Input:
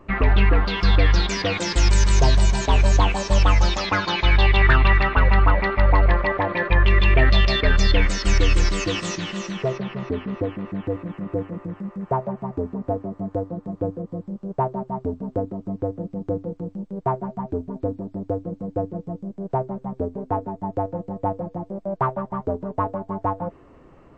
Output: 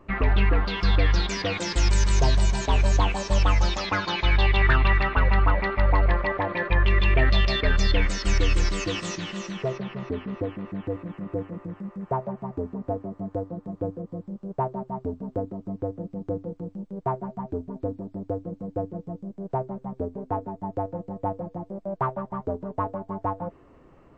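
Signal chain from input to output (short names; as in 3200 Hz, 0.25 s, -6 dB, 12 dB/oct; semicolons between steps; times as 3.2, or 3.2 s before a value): gain -4 dB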